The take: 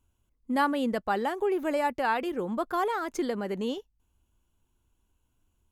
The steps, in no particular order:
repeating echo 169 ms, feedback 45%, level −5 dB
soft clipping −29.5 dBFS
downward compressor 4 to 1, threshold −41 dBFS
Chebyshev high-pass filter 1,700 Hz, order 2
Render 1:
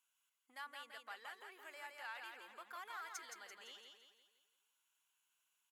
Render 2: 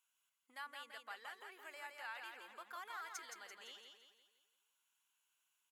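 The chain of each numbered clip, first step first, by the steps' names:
downward compressor, then repeating echo, then soft clipping, then Chebyshev high-pass filter
downward compressor, then Chebyshev high-pass filter, then soft clipping, then repeating echo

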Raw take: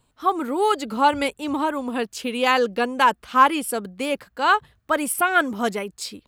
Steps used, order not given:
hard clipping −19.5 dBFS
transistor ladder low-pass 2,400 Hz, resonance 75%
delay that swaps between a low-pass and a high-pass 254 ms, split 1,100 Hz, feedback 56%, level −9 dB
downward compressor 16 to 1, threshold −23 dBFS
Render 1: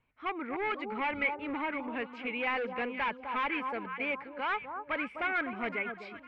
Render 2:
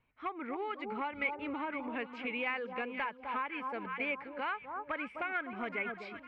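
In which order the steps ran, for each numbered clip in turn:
delay that swaps between a low-pass and a high-pass, then hard clipping, then transistor ladder low-pass, then downward compressor
delay that swaps between a low-pass and a high-pass, then downward compressor, then hard clipping, then transistor ladder low-pass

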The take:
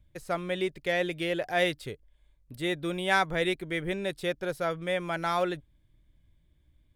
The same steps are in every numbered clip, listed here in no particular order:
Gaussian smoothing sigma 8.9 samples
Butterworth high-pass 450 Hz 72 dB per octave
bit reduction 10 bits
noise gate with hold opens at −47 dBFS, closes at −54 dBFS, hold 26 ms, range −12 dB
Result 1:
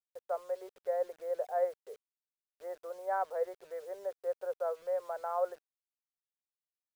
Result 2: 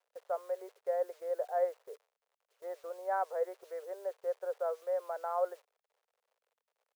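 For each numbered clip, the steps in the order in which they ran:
Butterworth high-pass, then noise gate with hold, then Gaussian smoothing, then bit reduction
Gaussian smoothing, then bit reduction, then Butterworth high-pass, then noise gate with hold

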